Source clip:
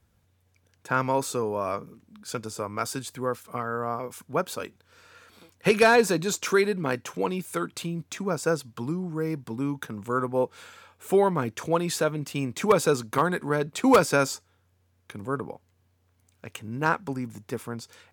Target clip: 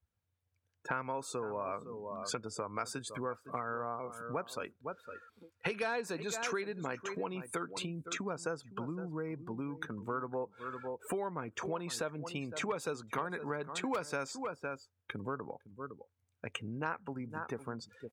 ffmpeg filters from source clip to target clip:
ffmpeg -i in.wav -af "equalizer=frequency=10000:width_type=o:width=2.6:gain=-4.5,aecho=1:1:509:0.168,afftdn=noise_reduction=22:noise_floor=-45,acompressor=threshold=-38dB:ratio=5,lowshelf=frequency=500:gain=-7,volume=5.5dB" out.wav

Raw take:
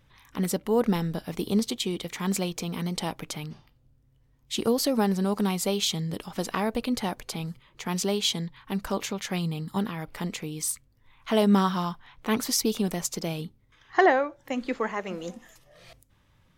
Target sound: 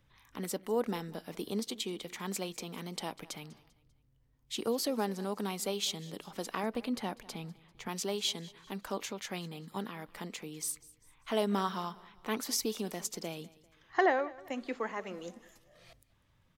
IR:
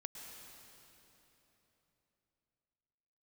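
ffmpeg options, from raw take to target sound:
-filter_complex "[0:a]asettb=1/sr,asplit=3[link_01][link_02][link_03];[link_01]atrim=end=6.634[link_04];[link_02]atrim=start=6.63:end=7.89,asetpts=PTS-STARTPTS,afade=type=in:duration=0.004:curve=qsin,afade=type=out:start_time=1.256:duration=0.004:curve=qsin,bass=frequency=250:gain=6,treble=frequency=4000:gain=-4[link_05];[link_03]atrim=start=7.886[link_06];[link_04][link_05]acrossfade=duration=0.004:curve1=hsin:curve2=qsin[link_07];[link_07][link_06]acrossfade=duration=0.004:curve1=qsin:curve2=hsin,acrossover=split=210|5300[link_08][link_09][link_10];[link_08]acompressor=threshold=-48dB:ratio=6[link_11];[link_11][link_09][link_10]amix=inputs=3:normalize=0,aecho=1:1:197|394|591:0.0891|0.0357|0.0143,volume=-7dB"

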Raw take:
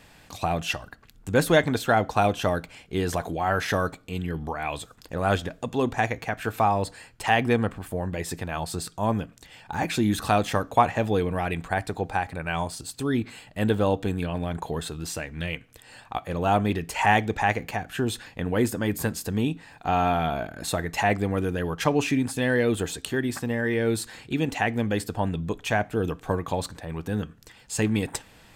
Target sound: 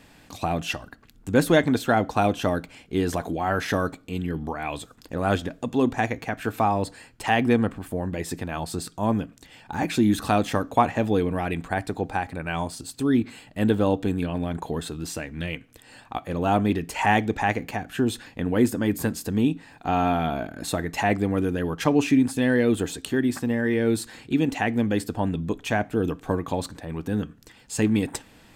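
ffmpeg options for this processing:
ffmpeg -i in.wav -af "equalizer=frequency=270:width_type=o:width=0.86:gain=7,volume=-1dB" out.wav

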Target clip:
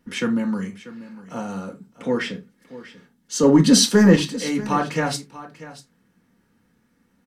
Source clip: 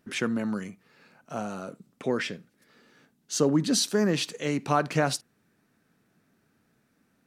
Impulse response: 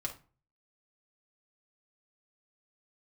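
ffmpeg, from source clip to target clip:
-filter_complex "[0:a]asettb=1/sr,asplit=3[link_01][link_02][link_03];[link_01]atrim=end=3.434[link_04];[link_02]atrim=start=3.43:end=4.16,asetpts=PTS-STARTPTS,afade=type=in:duration=0.004:curve=qsin,afade=type=out:start_time=0.726:duration=0.004:curve=qsin,acontrast=79[link_05];[link_03]atrim=start=4.156[link_06];[link_04][link_05]acrossfade=duration=0.004:curve1=hsin:curve2=qsin[link_07];[link_07][link_06]acrossfade=duration=0.004:curve1=qsin:curve2=hsin,aecho=1:1:640:0.15[link_08];[1:a]atrim=start_sample=2205,afade=type=out:start_time=0.22:duration=0.01,atrim=end_sample=10143,asetrate=66150,aresample=44100[link_09];[link_08][link_09]afir=irnorm=-1:irlink=0,volume=5.5dB"

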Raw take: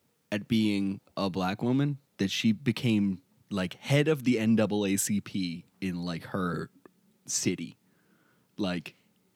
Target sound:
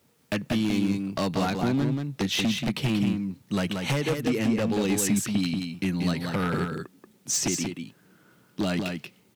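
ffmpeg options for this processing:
ffmpeg -i in.wav -af "acompressor=threshold=-27dB:ratio=12,aeval=exprs='0.0531*(abs(mod(val(0)/0.0531+3,4)-2)-1)':channel_layout=same,aecho=1:1:183:0.562,volume=6.5dB" out.wav

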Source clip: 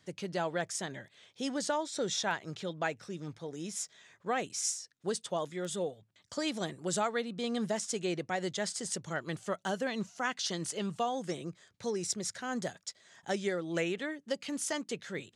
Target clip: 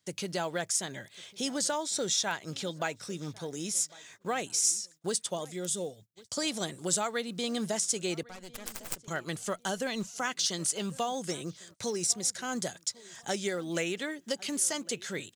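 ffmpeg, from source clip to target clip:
ffmpeg -i in.wav -filter_complex "[0:a]crystalizer=i=2.5:c=0,acompressor=threshold=-47dB:ratio=1.5,asettb=1/sr,asplit=3[link_01][link_02][link_03];[link_01]atrim=end=5.354[link_04];[link_02]atrim=start=5.35:end=6.37,asetpts=PTS-STARTPTS,afade=type=in:duration=0.004:curve=qsin,afade=type=out:start_time=1.016:duration=0.004:curve=qsin,equalizer=frequency=1400:width_type=o:width=2.1:gain=-7[link_05];[link_03]atrim=start=6.366[link_06];[link_04][link_05]acrossfade=duration=0.004:curve1=hsin:curve2=qsin[link_07];[link_07][link_06]acrossfade=duration=0.004:curve1=qsin:curve2=hsin,asettb=1/sr,asplit=3[link_08][link_09][link_10];[link_08]atrim=end=8.234[link_11];[link_09]atrim=start=8.23:end=9.08,asetpts=PTS-STARTPTS,afade=type=in:duration=0.004:curve=qsin,afade=type=out:start_time=0.846:duration=0.004:curve=qsin,aeval=exprs='0.0944*(cos(1*acos(clip(val(0)/0.0944,-1,1)))-cos(1*PI/2))+0.0376*(cos(3*acos(clip(val(0)/0.0944,-1,1)))-cos(3*PI/2))+0.0106*(cos(4*acos(clip(val(0)/0.0944,-1,1)))-cos(4*PI/2))':channel_layout=same[link_12];[link_10]atrim=start=9.076[link_13];[link_11][link_12]acrossfade=duration=0.004:curve1=hsin:curve2=qsin[link_14];[link_14][link_13]acrossfade=duration=0.004:curve1=qsin:curve2=hsin,acrusher=bits=8:mode=log:mix=0:aa=0.000001,asplit=2[link_15][link_16];[link_16]adelay=1102,lowpass=frequency=2200:poles=1,volume=-22dB,asplit=2[link_17][link_18];[link_18]adelay=1102,lowpass=frequency=2200:poles=1,volume=0.33[link_19];[link_15][link_17][link_19]amix=inputs=3:normalize=0,agate=range=-21dB:threshold=-59dB:ratio=16:detection=peak,bandreject=frequency=1800:width=25,volume=6.5dB" out.wav

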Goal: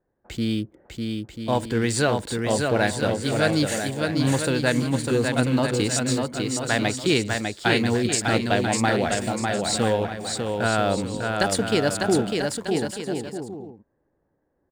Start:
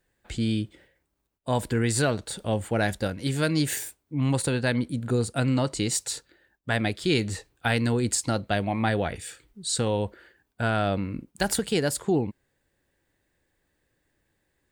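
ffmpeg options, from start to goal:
ffmpeg -i in.wav -filter_complex "[0:a]lowpass=8100,lowshelf=frequency=130:gain=-9.5,acrossover=split=1200[link_01][link_02];[link_02]aeval=exprs='sgn(val(0))*max(abs(val(0))-0.00335,0)':channel_layout=same[link_03];[link_01][link_03]amix=inputs=2:normalize=0,aecho=1:1:600|990|1244|1408|1515:0.631|0.398|0.251|0.158|0.1,volume=4dB" out.wav

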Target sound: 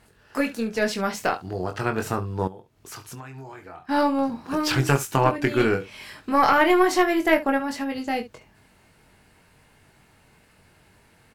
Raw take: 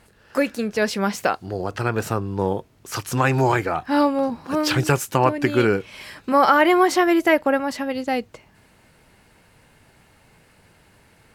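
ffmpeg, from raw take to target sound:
ffmpeg -i in.wav -filter_complex "[0:a]bandreject=frequency=530:width=12,asplit=2[link_01][link_02];[link_02]aecho=0:1:22|69:0.531|0.178[link_03];[link_01][link_03]amix=inputs=2:normalize=0,asettb=1/sr,asplit=3[link_04][link_05][link_06];[link_04]atrim=end=2.474[link_07];[link_05]atrim=start=2.47:end=3.89,asetpts=PTS-STARTPTS,afade=type=in:duration=0.004:curve=qsin,afade=type=out:start_time=1.416:duration=0.004:curve=qsin,acompressor=threshold=-34dB:ratio=10[link_08];[link_06]atrim=start=3.886[link_09];[link_07][link_08]acrossfade=duration=0.004:curve1=hsin:curve2=qsin[link_10];[link_10][link_09]acrossfade=duration=0.004:curve1=qsin:curve2=hsin,aeval=exprs='0.668*(cos(1*acos(clip(val(0)/0.668,-1,1)))-cos(1*PI/2))+0.133*(cos(2*acos(clip(val(0)/0.668,-1,1)))-cos(2*PI/2))':channel_layout=same,volume=-3.5dB" out.wav

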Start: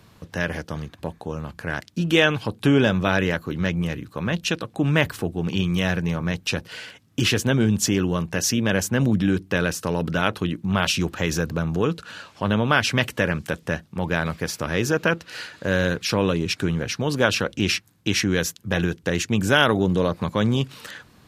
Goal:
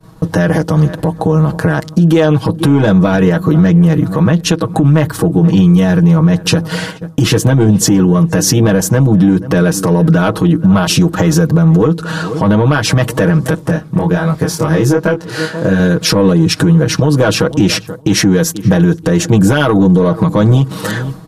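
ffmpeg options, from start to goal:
ffmpeg -i in.wav -filter_complex "[0:a]tiltshelf=frequency=970:gain=5,asplit=2[link_01][link_02];[link_02]adelay=481,lowpass=frequency=2000:poles=1,volume=-22.5dB,asplit=2[link_03][link_04];[link_04]adelay=481,lowpass=frequency=2000:poles=1,volume=0.29[link_05];[link_01][link_03][link_05]amix=inputs=3:normalize=0,agate=range=-33dB:threshold=-40dB:ratio=3:detection=peak,equalizer=frequency=1000:width_type=o:width=0.67:gain=3,equalizer=frequency=2500:width_type=o:width=0.67:gain=-7,equalizer=frequency=10000:width_type=o:width=0.67:gain=5,asoftclip=type=tanh:threshold=-7.5dB,aecho=1:1:6.3:0.84,acompressor=threshold=-22dB:ratio=10,asettb=1/sr,asplit=3[link_06][link_07][link_08];[link_06]atrim=end=13.554[link_09];[link_07]atrim=start=13.55:end=15.8,asetpts=PTS-STARTPTS,afade=type=in:duration=0.004:curve=qsin,afade=type=out:start_time=2.246:duration=0.004:curve=qsin,flanger=delay=20:depth=5.4:speed=1.3[link_10];[link_08]atrim=start=15.796[link_11];[link_09][link_10]acrossfade=duration=0.004:curve1=hsin:curve2=qsin[link_12];[link_12][link_11]acrossfade=duration=0.004:curve1=qsin:curve2=hsin,alimiter=level_in=18.5dB:limit=-1dB:release=50:level=0:latency=1,volume=-1dB" out.wav

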